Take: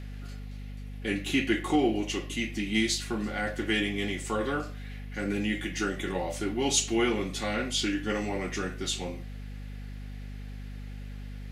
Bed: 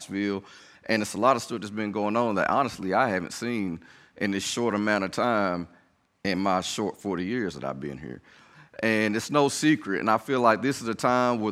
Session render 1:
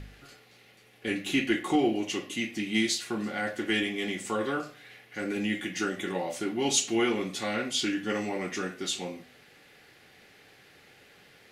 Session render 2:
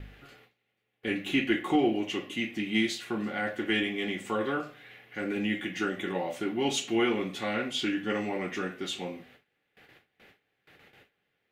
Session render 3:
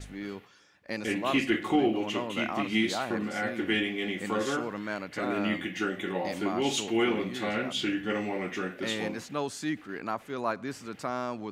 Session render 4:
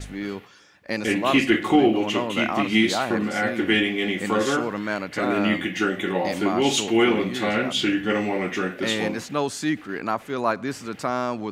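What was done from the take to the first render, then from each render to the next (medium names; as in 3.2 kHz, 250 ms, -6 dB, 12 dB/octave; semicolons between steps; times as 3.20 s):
de-hum 50 Hz, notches 5
gate with hold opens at -45 dBFS; high-order bell 7.1 kHz -9.5 dB
add bed -10.5 dB
trim +7.5 dB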